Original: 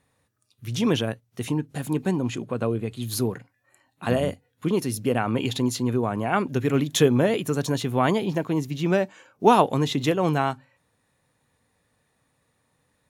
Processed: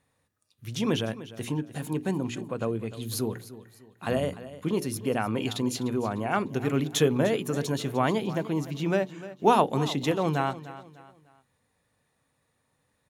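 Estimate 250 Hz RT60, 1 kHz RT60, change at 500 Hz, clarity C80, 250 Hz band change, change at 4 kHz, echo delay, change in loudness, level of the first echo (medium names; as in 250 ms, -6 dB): no reverb, no reverb, -3.5 dB, no reverb, -4.0 dB, -3.5 dB, 300 ms, -4.0 dB, -15.5 dB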